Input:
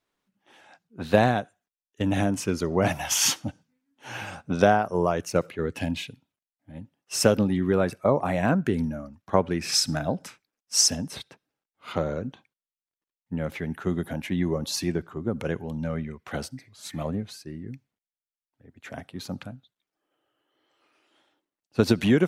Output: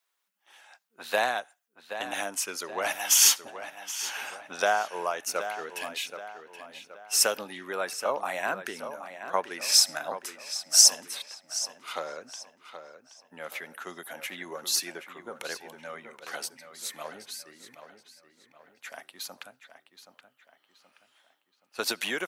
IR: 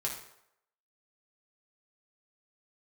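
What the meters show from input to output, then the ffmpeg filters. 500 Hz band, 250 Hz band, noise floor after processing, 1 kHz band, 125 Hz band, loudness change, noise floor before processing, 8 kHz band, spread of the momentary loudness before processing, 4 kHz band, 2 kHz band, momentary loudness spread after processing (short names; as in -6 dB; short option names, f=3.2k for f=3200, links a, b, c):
-8.5 dB, -20.5 dB, -74 dBFS, -3.0 dB, under -25 dB, -0.5 dB, under -85 dBFS, +4.5 dB, 18 LU, +3.0 dB, +0.5 dB, 22 LU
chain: -filter_complex "[0:a]highpass=850,highshelf=f=8.2k:g=11.5,asplit=2[a][b];[b]adelay=775,lowpass=f=4.1k:p=1,volume=-10dB,asplit=2[c][d];[d]adelay=775,lowpass=f=4.1k:p=1,volume=0.44,asplit=2[e][f];[f]adelay=775,lowpass=f=4.1k:p=1,volume=0.44,asplit=2[g][h];[h]adelay=775,lowpass=f=4.1k:p=1,volume=0.44,asplit=2[i][j];[j]adelay=775,lowpass=f=4.1k:p=1,volume=0.44[k];[a][c][e][g][i][k]amix=inputs=6:normalize=0"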